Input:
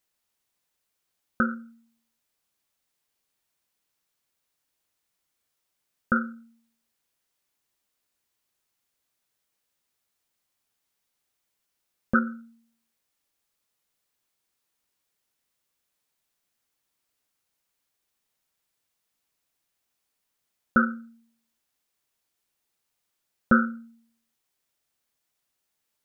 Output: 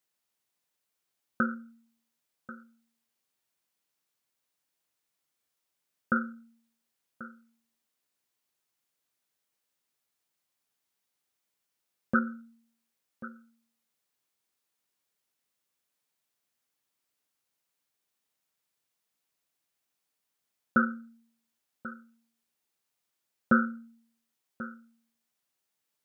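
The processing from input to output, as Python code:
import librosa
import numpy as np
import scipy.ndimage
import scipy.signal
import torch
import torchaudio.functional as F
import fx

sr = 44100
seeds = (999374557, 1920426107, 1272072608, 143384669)

y = scipy.signal.sosfilt(scipy.signal.butter(2, 100.0, 'highpass', fs=sr, output='sos'), x)
y = y + 10.0 ** (-16.5 / 20.0) * np.pad(y, (int(1088 * sr / 1000.0), 0))[:len(y)]
y = F.gain(torch.from_numpy(y), -3.5).numpy()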